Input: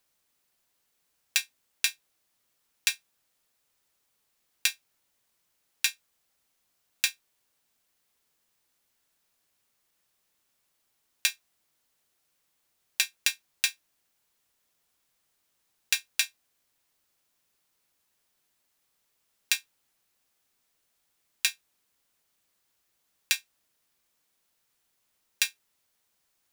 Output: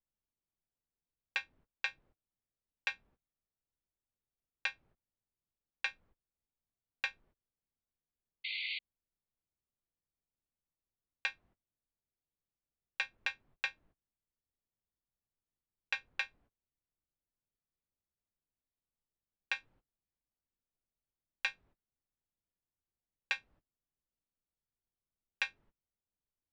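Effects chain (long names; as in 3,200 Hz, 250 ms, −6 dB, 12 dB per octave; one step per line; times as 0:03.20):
noise gate −57 dBFS, range −27 dB
spectral tilt −3.5 dB per octave
0:08.44–0:08.79: sound drawn into the spectrogram noise 2,000–4,700 Hz −34 dBFS
head-to-tape spacing loss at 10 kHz 42 dB, from 0:19.55 at 10 kHz 37 dB
level +8 dB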